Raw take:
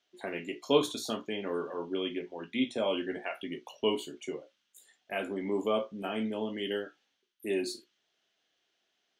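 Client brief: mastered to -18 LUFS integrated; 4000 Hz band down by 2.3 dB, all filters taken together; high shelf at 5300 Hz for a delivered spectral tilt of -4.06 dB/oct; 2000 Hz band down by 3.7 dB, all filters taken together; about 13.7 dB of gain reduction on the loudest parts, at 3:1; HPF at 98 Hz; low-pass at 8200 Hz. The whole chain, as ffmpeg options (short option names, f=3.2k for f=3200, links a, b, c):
-af "highpass=98,lowpass=8.2k,equalizer=f=2k:t=o:g=-5,equalizer=f=4k:t=o:g=-3.5,highshelf=f=5.3k:g=7.5,acompressor=threshold=-38dB:ratio=3,volume=23.5dB"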